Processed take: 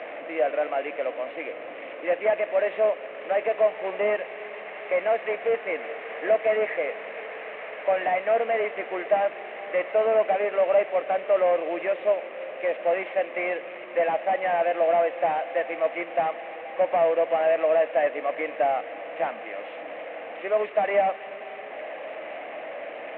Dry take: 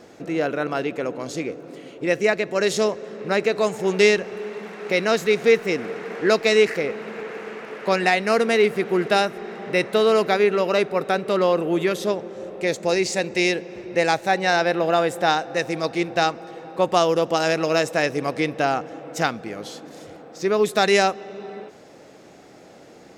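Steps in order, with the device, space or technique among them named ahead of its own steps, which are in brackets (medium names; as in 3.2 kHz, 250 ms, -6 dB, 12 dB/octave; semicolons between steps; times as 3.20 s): digital answering machine (band-pass 380–3300 Hz; one-bit delta coder 16 kbps, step -30 dBFS; cabinet simulation 390–3400 Hz, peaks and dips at 390 Hz -9 dB, 620 Hz +8 dB, 930 Hz -5 dB, 1.4 kHz -8 dB, 2.1 kHz +3 dB, 3.3 kHz -6 dB)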